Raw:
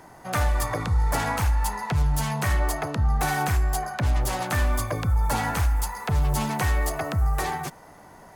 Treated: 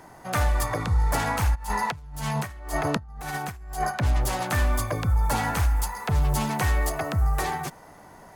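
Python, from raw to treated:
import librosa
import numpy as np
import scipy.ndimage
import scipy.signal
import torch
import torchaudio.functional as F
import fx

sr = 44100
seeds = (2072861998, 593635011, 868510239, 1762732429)

y = fx.over_compress(x, sr, threshold_db=-29.0, ratio=-0.5, at=(1.54, 3.9), fade=0.02)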